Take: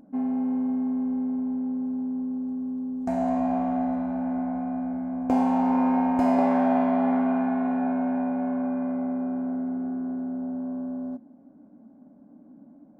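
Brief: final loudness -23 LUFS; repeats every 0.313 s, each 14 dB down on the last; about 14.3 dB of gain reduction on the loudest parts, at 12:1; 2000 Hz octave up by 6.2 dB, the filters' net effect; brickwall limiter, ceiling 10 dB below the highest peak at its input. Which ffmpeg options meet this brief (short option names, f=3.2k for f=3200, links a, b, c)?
-af "equalizer=f=2k:t=o:g=8.5,acompressor=threshold=-32dB:ratio=12,alimiter=level_in=7dB:limit=-24dB:level=0:latency=1,volume=-7dB,aecho=1:1:313|626:0.2|0.0399,volume=13.5dB"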